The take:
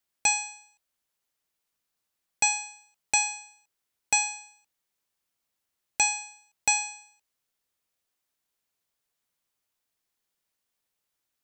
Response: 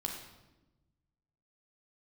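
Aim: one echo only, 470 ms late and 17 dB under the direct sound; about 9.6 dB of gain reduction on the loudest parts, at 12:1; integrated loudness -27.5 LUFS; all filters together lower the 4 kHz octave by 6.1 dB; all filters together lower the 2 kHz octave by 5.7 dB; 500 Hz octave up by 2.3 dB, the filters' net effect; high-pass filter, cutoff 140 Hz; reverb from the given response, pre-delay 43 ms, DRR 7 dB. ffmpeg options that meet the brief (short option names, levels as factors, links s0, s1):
-filter_complex "[0:a]highpass=140,equalizer=f=500:t=o:g=3.5,equalizer=f=2000:t=o:g=-5.5,equalizer=f=4000:t=o:g=-5.5,acompressor=threshold=0.0316:ratio=12,aecho=1:1:470:0.141,asplit=2[s0][s1];[1:a]atrim=start_sample=2205,adelay=43[s2];[s1][s2]afir=irnorm=-1:irlink=0,volume=0.398[s3];[s0][s3]amix=inputs=2:normalize=0,volume=2.99"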